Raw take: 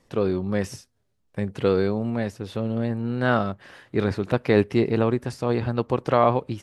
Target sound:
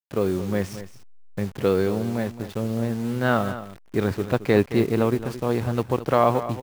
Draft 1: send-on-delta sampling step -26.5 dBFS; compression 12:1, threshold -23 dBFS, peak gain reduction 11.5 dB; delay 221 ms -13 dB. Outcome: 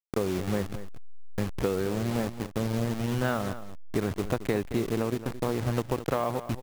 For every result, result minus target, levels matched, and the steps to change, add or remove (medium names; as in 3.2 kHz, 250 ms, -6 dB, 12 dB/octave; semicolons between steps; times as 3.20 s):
compression: peak gain reduction +11.5 dB; send-on-delta sampling: distortion +10 dB
remove: compression 12:1, threshold -23 dBFS, peak gain reduction 11.5 dB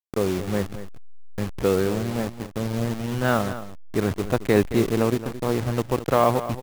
send-on-delta sampling: distortion +10 dB
change: send-on-delta sampling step -36.5 dBFS